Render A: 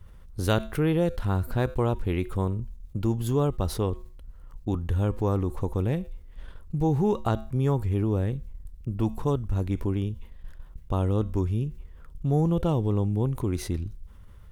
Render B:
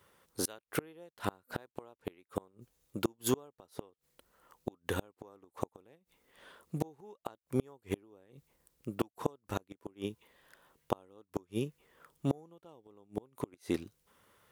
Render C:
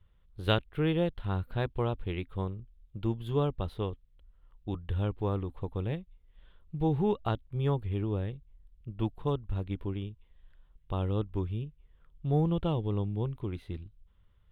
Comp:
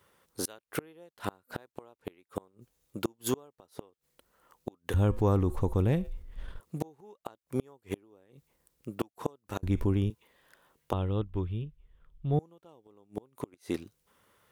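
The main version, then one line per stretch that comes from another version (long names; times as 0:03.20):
B
0:04.94–0:06.60: punch in from A
0:09.63–0:10.10: punch in from A
0:10.93–0:12.39: punch in from C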